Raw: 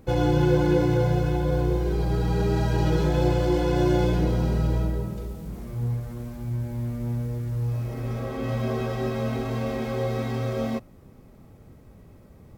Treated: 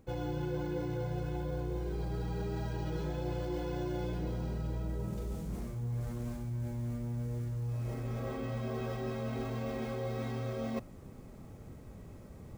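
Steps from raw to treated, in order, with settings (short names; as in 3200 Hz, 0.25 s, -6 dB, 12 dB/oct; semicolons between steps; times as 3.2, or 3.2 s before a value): reverse; compressor 6:1, threshold -34 dBFS, peak gain reduction 16.5 dB; reverse; careless resampling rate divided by 2×, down none, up hold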